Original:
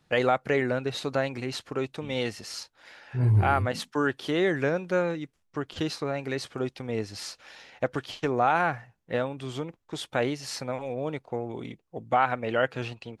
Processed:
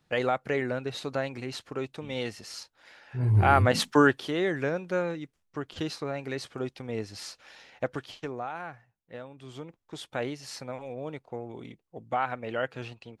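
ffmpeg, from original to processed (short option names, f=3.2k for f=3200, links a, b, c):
-af "volume=17dB,afade=t=in:st=3.27:d=0.64:silence=0.251189,afade=t=out:st=3.91:d=0.38:silence=0.266073,afade=t=out:st=7.87:d=0.62:silence=0.281838,afade=t=in:st=9.24:d=0.58:silence=0.375837"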